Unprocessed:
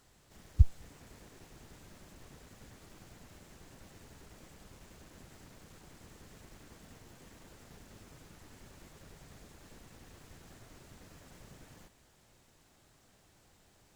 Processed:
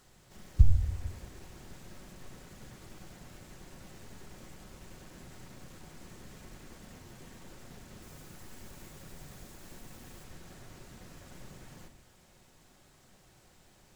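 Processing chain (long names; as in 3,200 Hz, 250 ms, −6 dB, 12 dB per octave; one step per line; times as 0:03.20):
0:08.02–0:10.24: high-shelf EQ 10,000 Hz +9 dB
convolution reverb RT60 0.75 s, pre-delay 5 ms, DRR 7.5 dB
level +3 dB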